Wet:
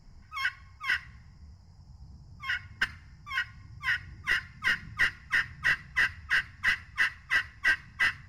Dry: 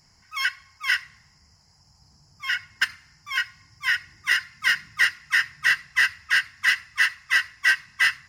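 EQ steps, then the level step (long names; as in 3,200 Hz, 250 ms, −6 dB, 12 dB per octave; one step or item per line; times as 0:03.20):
spectral tilt −4 dB per octave
high-shelf EQ 11,000 Hz +6.5 dB
mains-hum notches 50/100/150 Hz
−2.5 dB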